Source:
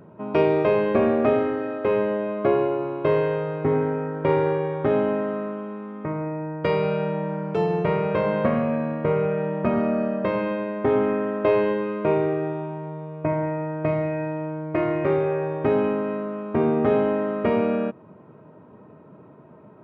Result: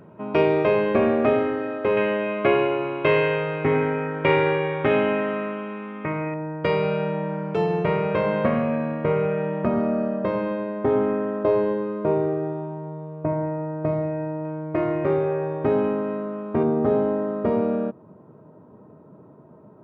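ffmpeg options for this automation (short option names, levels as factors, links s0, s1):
-af "asetnsamples=n=441:p=0,asendcmd='1.97 equalizer g 14;6.34 equalizer g 2.5;9.65 equalizer g -6;11.43 equalizer g -12;14.45 equalizer g -4.5;16.63 equalizer g -13',equalizer=f=2500:t=o:w=1.3:g=3.5"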